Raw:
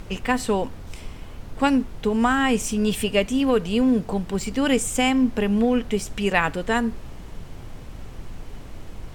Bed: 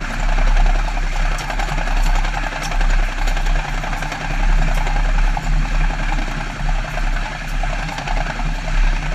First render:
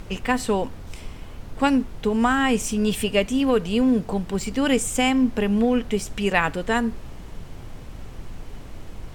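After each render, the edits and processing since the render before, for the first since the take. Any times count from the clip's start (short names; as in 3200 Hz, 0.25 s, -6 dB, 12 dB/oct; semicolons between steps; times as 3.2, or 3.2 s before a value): nothing audible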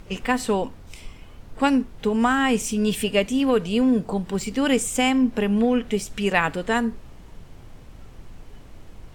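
noise print and reduce 6 dB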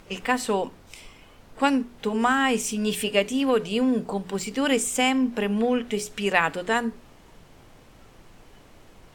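low shelf 150 Hz -12 dB; notches 60/120/180/240/300/360/420 Hz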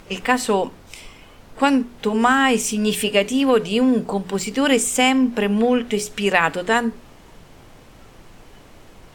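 gain +5.5 dB; limiter -3 dBFS, peak gain reduction 3 dB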